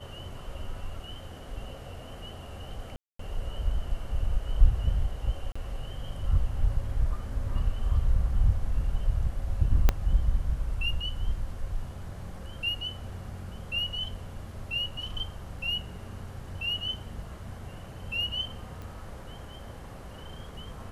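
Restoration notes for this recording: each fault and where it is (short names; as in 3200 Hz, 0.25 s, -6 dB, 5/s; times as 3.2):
2.96–3.19 gap 0.234 s
5.52–5.55 gap 35 ms
9.89 pop -8 dBFS
18.82 pop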